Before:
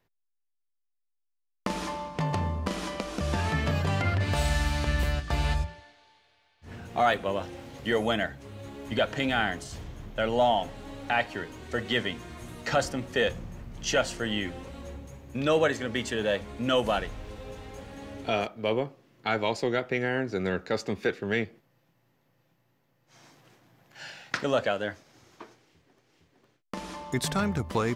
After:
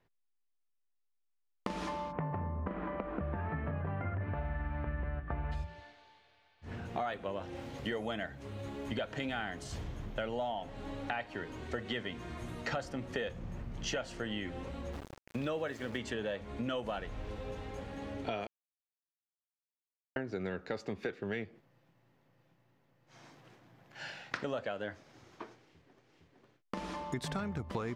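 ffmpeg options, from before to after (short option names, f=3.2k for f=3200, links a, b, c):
-filter_complex "[0:a]asplit=3[a][b][c];[a]afade=t=out:st=2.11:d=0.02[d];[b]lowpass=f=1.9k:w=0.5412,lowpass=f=1.9k:w=1.3066,afade=t=in:st=2.11:d=0.02,afade=t=out:st=5.51:d=0.02[e];[c]afade=t=in:st=5.51:d=0.02[f];[d][e][f]amix=inputs=3:normalize=0,asettb=1/sr,asplit=3[g][h][i];[g]atrim=end=7.554[j];[h]atrim=start=7.55:end=10.52,asetpts=PTS-STARTPTS,afade=t=in:d=0.004:c=qsin,afade=t=out:st=2.966:d=0.004:c=qsin,highshelf=f=5.3k:g=4.5[k];[i]atrim=start=10.516[l];[j][k]acrossfade=d=0.004:c1=hsin:c2=qsin[m];[m][l]acrossfade=d=0.004:c1=qsin:c2=hsin,asplit=3[n][o][p];[n]afade=t=out:st=14.92:d=0.02[q];[o]aeval=exprs='val(0)*gte(abs(val(0)),0.0119)':c=same,afade=t=in:st=14.92:d=0.02,afade=t=out:st=15.97:d=0.02[r];[p]afade=t=in:st=15.97:d=0.02[s];[q][r][s]amix=inputs=3:normalize=0,asplit=3[t][u][v];[t]atrim=end=18.47,asetpts=PTS-STARTPTS,afade=t=out:st=18.466:d=0.004:c=hsin[w];[u]atrim=start=18.47:end=20.16,asetpts=PTS-STARTPTS,volume=0[x];[v]atrim=start=20.16,asetpts=PTS-STARTPTS,afade=t=in:d=0.004:c=hsin[y];[w][x][y]concat=n=3:v=0:a=1,lowpass=f=3.3k:p=1,acompressor=threshold=-34dB:ratio=6"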